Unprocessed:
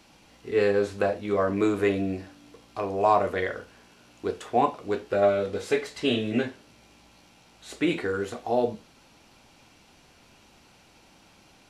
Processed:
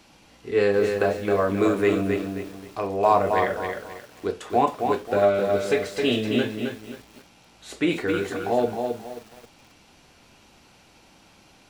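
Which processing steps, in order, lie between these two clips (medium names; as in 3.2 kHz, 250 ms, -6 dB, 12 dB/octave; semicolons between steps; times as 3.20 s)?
bit-crushed delay 266 ms, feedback 35%, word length 8-bit, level -5 dB; trim +2 dB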